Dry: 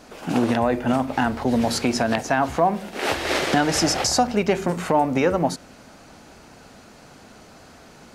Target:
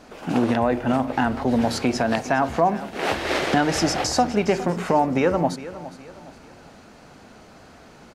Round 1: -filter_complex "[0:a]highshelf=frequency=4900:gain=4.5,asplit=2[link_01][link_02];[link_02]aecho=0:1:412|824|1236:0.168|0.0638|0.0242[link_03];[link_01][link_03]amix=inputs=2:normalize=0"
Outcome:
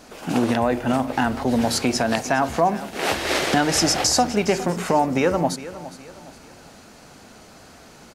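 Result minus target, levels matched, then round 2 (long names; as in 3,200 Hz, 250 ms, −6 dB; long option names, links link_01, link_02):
8,000 Hz band +6.5 dB
-filter_complex "[0:a]highshelf=frequency=4900:gain=-7,asplit=2[link_01][link_02];[link_02]aecho=0:1:412|824|1236:0.168|0.0638|0.0242[link_03];[link_01][link_03]amix=inputs=2:normalize=0"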